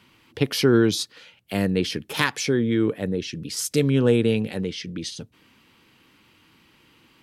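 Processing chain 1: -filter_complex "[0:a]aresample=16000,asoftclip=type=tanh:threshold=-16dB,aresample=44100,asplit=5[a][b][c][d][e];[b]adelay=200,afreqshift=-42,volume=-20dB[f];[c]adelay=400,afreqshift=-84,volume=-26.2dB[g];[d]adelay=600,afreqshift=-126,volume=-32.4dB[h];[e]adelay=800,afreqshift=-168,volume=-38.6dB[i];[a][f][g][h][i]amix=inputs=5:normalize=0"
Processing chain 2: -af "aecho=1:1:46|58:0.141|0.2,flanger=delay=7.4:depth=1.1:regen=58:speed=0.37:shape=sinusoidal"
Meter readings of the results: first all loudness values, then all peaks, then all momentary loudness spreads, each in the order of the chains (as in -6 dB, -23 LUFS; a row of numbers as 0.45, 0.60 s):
-26.0, -27.0 LUFS; -14.0, -7.5 dBFS; 12, 14 LU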